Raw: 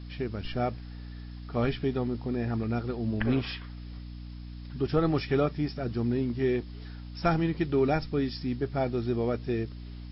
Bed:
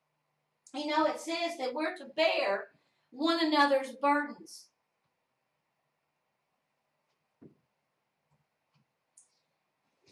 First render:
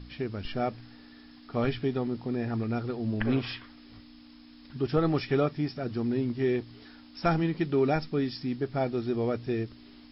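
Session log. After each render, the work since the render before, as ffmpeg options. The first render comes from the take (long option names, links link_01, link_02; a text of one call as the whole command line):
ffmpeg -i in.wav -af "bandreject=frequency=60:width_type=h:width=4,bandreject=frequency=120:width_type=h:width=4,bandreject=frequency=180:width_type=h:width=4" out.wav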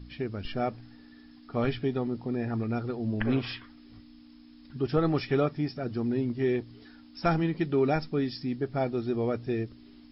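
ffmpeg -i in.wav -af "afftdn=noise_reduction=6:noise_floor=-52" out.wav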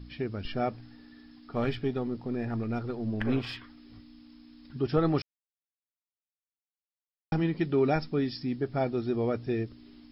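ffmpeg -i in.wav -filter_complex "[0:a]asettb=1/sr,asplit=3[link_01][link_02][link_03];[link_01]atrim=end=1.534[link_04];[link_02]atrim=start=1.53:end=3.57,asetpts=PTS-STARTPTS,afade=type=in:duration=0.004:curve=qsin,afade=type=out:start_time=2.036:duration=0.004:curve=qsin,aeval=exprs='if(lt(val(0),0),0.708*val(0),val(0))':channel_layout=same[link_05];[link_03]atrim=start=3.566[link_06];[link_04][link_05]acrossfade=duration=0.004:curve1=hsin:curve2=qsin[link_07];[link_07][link_06]acrossfade=duration=0.004:curve1=qsin:curve2=hsin,asplit=3[link_08][link_09][link_10];[link_08]atrim=end=5.22,asetpts=PTS-STARTPTS,afade=type=out:start_time=5.216:duration=0.004:curve=hsin[link_11];[link_09]atrim=start=5.22:end=7.32,asetpts=PTS-STARTPTS,volume=0[link_12];[link_10]atrim=start=7.32,asetpts=PTS-STARTPTS,afade=type=in:duration=0.004:curve=hsin[link_13];[link_11][link_12][link_13]concat=n=3:v=0:a=1" out.wav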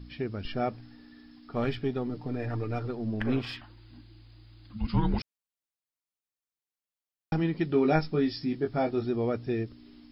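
ffmpeg -i in.wav -filter_complex "[0:a]asettb=1/sr,asplit=3[link_01][link_02][link_03];[link_01]atrim=end=2.094[link_04];[link_02]atrim=start=2.09:end=2.88,asetpts=PTS-STARTPTS,afade=type=in:duration=0.004:curve=qsin,afade=type=out:start_time=0.786:duration=0.004:curve=qsin,aecho=1:1:6.7:0.71,atrim=end_sample=34839[link_05];[link_03]atrim=start=2.876[link_06];[link_04][link_05]acrossfade=duration=0.004:curve1=hsin:curve2=qsin[link_07];[link_07][link_06]acrossfade=duration=0.004:curve1=qsin:curve2=hsin,asettb=1/sr,asplit=3[link_08][link_09][link_10];[link_08]atrim=end=3.614[link_11];[link_09]atrim=start=3.61:end=5.2,asetpts=PTS-STARTPTS,afade=type=in:duration=0.004:curve=qsin,afade=type=out:start_time=1.586:duration=0.004:curve=qsin,afreqshift=-350[link_12];[link_10]atrim=start=5.196[link_13];[link_11][link_12]acrossfade=duration=0.004:curve1=hsin:curve2=qsin[link_14];[link_14][link_13]acrossfade=duration=0.004:curve1=qsin:curve2=hsin,asettb=1/sr,asplit=3[link_15][link_16][link_17];[link_15]atrim=end=7.704[link_18];[link_16]atrim=start=7.7:end=9.05,asetpts=PTS-STARTPTS,afade=type=in:duration=0.004:curve=qsin,afade=type=out:start_time=1.346:duration=0.004:curve=qsin,asplit=2[link_19][link_20];[link_20]adelay=19,volume=-3.5dB[link_21];[link_19][link_21]amix=inputs=2:normalize=0,atrim=end_sample=59535[link_22];[link_17]atrim=start=9.046[link_23];[link_18][link_22]acrossfade=duration=0.004:curve1=hsin:curve2=qsin[link_24];[link_24][link_23]acrossfade=duration=0.004:curve1=qsin:curve2=hsin" out.wav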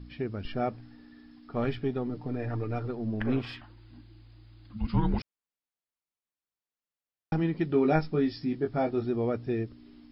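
ffmpeg -i in.wav -af "highshelf=frequency=4000:gain=-9" out.wav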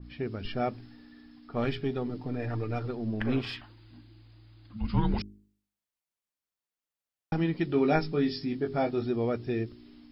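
ffmpeg -i in.wav -af "bandreject=frequency=51.26:width_type=h:width=4,bandreject=frequency=102.52:width_type=h:width=4,bandreject=frequency=153.78:width_type=h:width=4,bandreject=frequency=205.04:width_type=h:width=4,bandreject=frequency=256.3:width_type=h:width=4,bandreject=frequency=307.56:width_type=h:width=4,bandreject=frequency=358.82:width_type=h:width=4,bandreject=frequency=410.08:width_type=h:width=4,adynamicequalizer=threshold=0.00447:dfrequency=2200:dqfactor=0.7:tfrequency=2200:tqfactor=0.7:attack=5:release=100:ratio=0.375:range=3:mode=boostabove:tftype=highshelf" out.wav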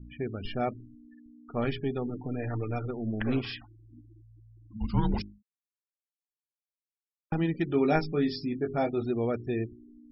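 ffmpeg -i in.wav -af "afftfilt=real='re*gte(hypot(re,im),0.00794)':imag='im*gte(hypot(re,im),0.00794)':win_size=1024:overlap=0.75" out.wav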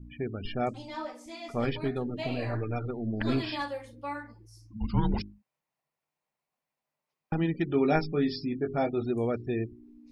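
ffmpeg -i in.wav -i bed.wav -filter_complex "[1:a]volume=-9.5dB[link_01];[0:a][link_01]amix=inputs=2:normalize=0" out.wav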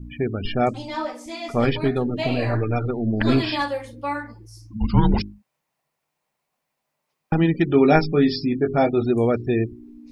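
ffmpeg -i in.wav -af "volume=9.5dB" out.wav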